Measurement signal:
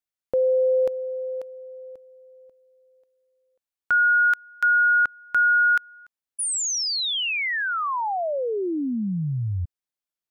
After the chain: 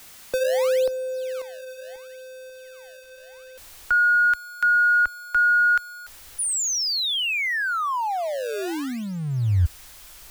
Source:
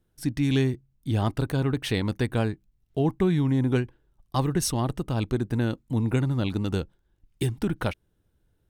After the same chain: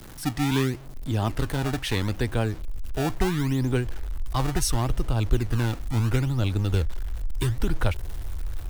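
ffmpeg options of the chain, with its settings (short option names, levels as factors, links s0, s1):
-filter_complex "[0:a]aeval=exprs='val(0)+0.5*0.0141*sgn(val(0))':c=same,asubboost=boost=11:cutoff=55,acrossover=split=120|460|4300[s0][s1][s2][s3];[s1]acrusher=samples=24:mix=1:aa=0.000001:lfo=1:lforange=38.4:lforate=0.73[s4];[s0][s4][s2][s3]amix=inputs=4:normalize=0"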